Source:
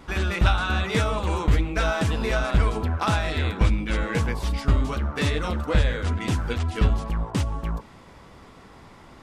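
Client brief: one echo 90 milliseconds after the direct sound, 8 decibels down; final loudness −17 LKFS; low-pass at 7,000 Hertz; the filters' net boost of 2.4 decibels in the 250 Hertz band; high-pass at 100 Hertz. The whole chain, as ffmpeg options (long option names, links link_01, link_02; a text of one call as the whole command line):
ffmpeg -i in.wav -af "highpass=100,lowpass=7000,equalizer=frequency=250:width_type=o:gain=3.5,aecho=1:1:90:0.398,volume=9dB" out.wav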